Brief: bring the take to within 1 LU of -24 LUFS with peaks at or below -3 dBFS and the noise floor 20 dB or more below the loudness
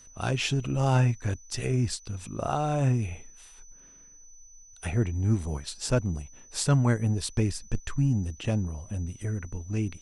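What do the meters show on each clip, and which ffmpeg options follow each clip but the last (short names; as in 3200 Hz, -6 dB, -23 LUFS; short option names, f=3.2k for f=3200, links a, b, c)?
steady tone 6000 Hz; tone level -51 dBFS; loudness -28.5 LUFS; peak -10.5 dBFS; loudness target -24.0 LUFS
-> -af "bandreject=f=6k:w=30"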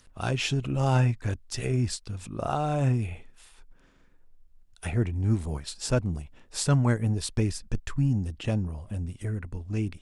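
steady tone none; loudness -28.5 LUFS; peak -10.5 dBFS; loudness target -24.0 LUFS
-> -af "volume=4.5dB"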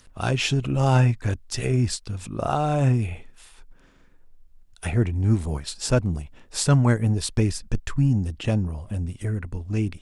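loudness -24.0 LUFS; peak -6.0 dBFS; noise floor -53 dBFS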